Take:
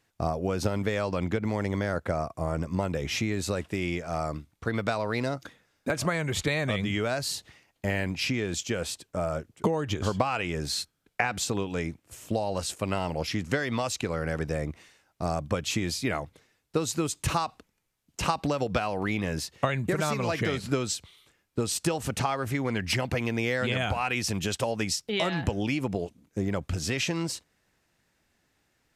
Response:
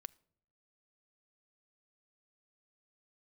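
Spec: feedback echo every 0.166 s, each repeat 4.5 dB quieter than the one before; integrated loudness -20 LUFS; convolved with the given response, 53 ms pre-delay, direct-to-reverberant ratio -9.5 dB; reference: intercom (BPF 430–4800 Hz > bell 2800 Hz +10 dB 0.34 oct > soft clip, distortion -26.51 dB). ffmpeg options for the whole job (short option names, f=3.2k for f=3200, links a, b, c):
-filter_complex "[0:a]aecho=1:1:166|332|498|664|830|996|1162|1328|1494:0.596|0.357|0.214|0.129|0.0772|0.0463|0.0278|0.0167|0.01,asplit=2[a][b];[1:a]atrim=start_sample=2205,adelay=53[c];[b][c]afir=irnorm=-1:irlink=0,volume=15dB[d];[a][d]amix=inputs=2:normalize=0,highpass=430,lowpass=4.8k,equalizer=f=2.8k:t=o:w=0.34:g=10,asoftclip=threshold=-3dB,volume=-0.5dB"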